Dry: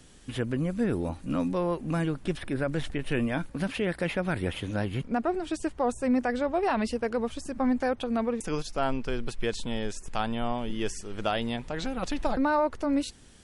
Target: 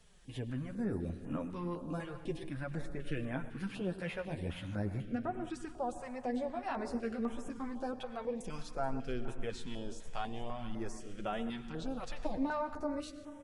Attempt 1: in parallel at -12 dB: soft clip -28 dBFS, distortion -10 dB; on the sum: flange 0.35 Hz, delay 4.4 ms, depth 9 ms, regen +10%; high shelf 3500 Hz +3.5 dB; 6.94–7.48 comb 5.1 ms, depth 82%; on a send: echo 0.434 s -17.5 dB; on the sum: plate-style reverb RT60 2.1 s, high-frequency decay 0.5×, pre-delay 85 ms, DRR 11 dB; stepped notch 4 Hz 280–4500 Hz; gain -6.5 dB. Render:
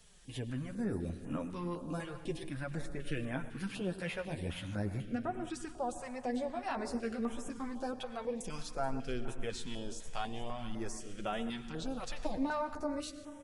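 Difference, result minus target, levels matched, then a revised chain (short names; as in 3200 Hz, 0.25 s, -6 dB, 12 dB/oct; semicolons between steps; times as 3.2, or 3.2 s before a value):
8000 Hz band +6.5 dB
in parallel at -12 dB: soft clip -28 dBFS, distortion -10 dB; on the sum: flange 0.35 Hz, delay 4.4 ms, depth 9 ms, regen +10%; high shelf 3500 Hz -4.5 dB; 6.94–7.48 comb 5.1 ms, depth 82%; on a send: echo 0.434 s -17.5 dB; on the sum: plate-style reverb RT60 2.1 s, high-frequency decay 0.5×, pre-delay 85 ms, DRR 11 dB; stepped notch 4 Hz 280–4500 Hz; gain -6.5 dB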